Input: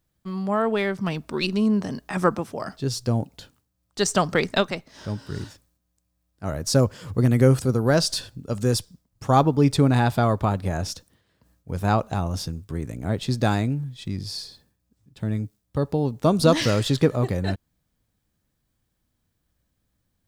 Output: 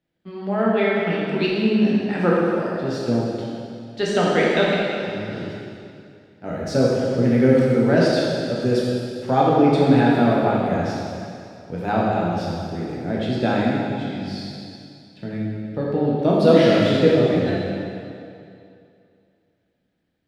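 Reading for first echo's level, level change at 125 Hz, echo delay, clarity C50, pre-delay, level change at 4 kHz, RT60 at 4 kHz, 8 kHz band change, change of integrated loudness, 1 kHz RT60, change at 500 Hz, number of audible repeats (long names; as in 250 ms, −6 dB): no echo audible, −1.5 dB, no echo audible, −2.5 dB, 6 ms, 0.0 dB, 2.3 s, can't be measured, +3.5 dB, 2.5 s, +6.0 dB, no echo audible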